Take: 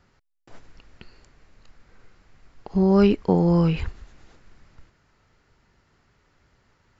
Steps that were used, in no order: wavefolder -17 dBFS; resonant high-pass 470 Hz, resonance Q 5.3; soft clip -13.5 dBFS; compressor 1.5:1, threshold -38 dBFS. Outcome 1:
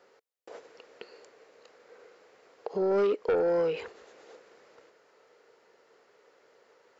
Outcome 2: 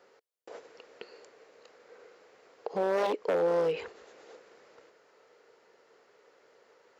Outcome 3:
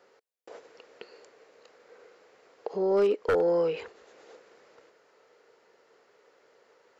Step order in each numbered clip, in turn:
resonant high-pass > soft clip > compressor > wavefolder; wavefolder > resonant high-pass > compressor > soft clip; compressor > resonant high-pass > wavefolder > soft clip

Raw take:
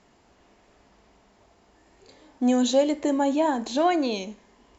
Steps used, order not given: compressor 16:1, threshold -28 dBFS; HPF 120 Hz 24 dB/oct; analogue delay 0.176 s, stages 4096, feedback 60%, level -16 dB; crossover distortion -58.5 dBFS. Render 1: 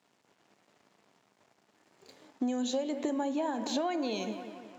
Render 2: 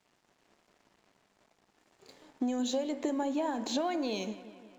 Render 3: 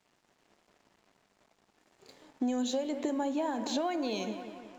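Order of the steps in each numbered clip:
analogue delay > crossover distortion > HPF > compressor; HPF > compressor > crossover distortion > analogue delay; analogue delay > compressor > HPF > crossover distortion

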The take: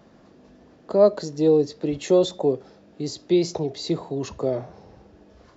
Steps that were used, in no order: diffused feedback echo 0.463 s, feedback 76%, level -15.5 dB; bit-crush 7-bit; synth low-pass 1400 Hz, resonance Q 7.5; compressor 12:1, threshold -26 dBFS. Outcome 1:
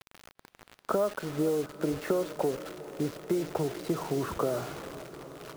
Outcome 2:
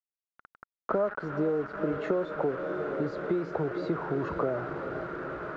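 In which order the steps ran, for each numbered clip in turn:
compressor > synth low-pass > bit-crush > diffused feedback echo; diffused feedback echo > compressor > bit-crush > synth low-pass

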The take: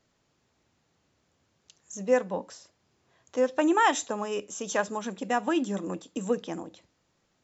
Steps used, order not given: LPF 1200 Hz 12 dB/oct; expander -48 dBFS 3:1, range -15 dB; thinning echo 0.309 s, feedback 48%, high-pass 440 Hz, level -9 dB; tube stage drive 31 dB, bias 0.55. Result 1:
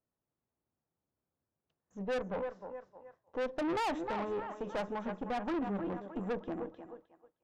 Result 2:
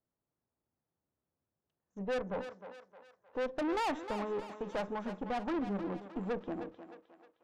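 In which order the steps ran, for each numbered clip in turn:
thinning echo > expander > LPF > tube stage; LPF > tube stage > expander > thinning echo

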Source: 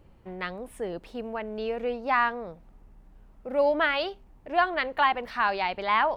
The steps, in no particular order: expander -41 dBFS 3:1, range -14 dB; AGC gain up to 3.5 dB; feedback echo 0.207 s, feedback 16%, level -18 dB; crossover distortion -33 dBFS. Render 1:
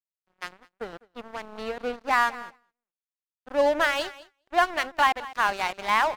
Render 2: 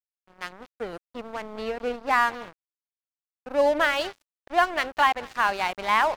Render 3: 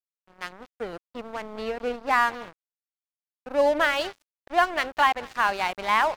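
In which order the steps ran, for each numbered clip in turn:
crossover distortion > AGC > feedback echo > expander; feedback echo > expander > AGC > crossover distortion; expander > AGC > feedback echo > crossover distortion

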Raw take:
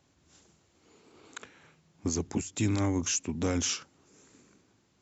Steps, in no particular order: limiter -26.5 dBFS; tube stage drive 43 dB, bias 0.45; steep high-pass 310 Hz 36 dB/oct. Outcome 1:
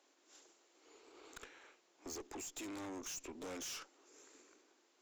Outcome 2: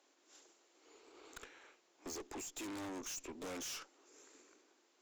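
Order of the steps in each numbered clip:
limiter > steep high-pass > tube stage; steep high-pass > tube stage > limiter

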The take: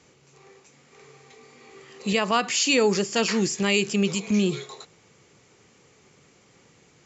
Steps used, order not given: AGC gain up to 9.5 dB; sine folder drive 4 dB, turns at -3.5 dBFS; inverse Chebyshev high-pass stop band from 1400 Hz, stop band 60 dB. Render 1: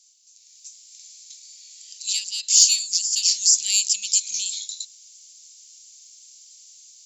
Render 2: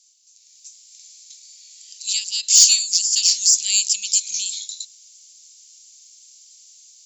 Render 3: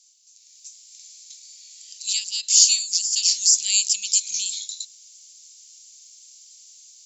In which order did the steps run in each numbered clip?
sine folder > inverse Chebyshev high-pass > AGC; inverse Chebyshev high-pass > AGC > sine folder; inverse Chebyshev high-pass > sine folder > AGC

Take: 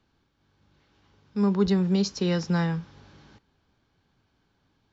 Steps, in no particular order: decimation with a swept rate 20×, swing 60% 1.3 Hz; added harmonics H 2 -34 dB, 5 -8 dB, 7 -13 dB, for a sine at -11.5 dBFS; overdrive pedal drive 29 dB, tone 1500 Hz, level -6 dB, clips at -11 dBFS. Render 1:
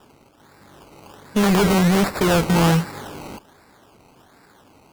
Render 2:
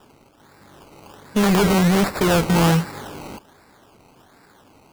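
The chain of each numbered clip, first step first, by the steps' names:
overdrive pedal > decimation with a swept rate > added harmonics; overdrive pedal > added harmonics > decimation with a swept rate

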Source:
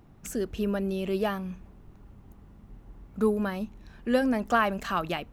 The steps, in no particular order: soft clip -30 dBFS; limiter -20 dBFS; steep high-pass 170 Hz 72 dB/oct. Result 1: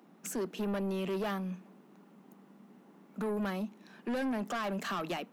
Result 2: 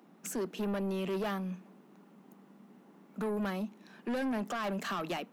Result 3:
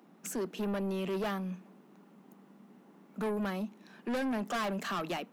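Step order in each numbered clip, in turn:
limiter > steep high-pass > soft clip; steep high-pass > limiter > soft clip; steep high-pass > soft clip > limiter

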